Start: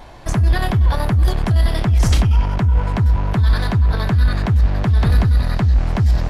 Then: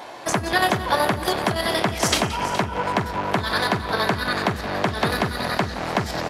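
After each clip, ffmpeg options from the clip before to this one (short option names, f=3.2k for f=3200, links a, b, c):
-filter_complex "[0:a]highpass=340,asplit=2[a][b];[b]aecho=0:1:174|419:0.158|0.224[c];[a][c]amix=inputs=2:normalize=0,volume=5.5dB"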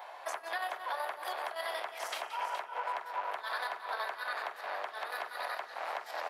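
-af "highpass=f=630:w=0.5412,highpass=f=630:w=1.3066,equalizer=f=6.5k:w=0.62:g=-11.5,alimiter=limit=-19dB:level=0:latency=1:release=196,volume=-7dB"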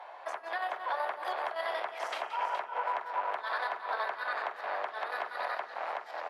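-af "aemphasis=mode=reproduction:type=75fm,dynaudnorm=f=130:g=9:m=3.5dB"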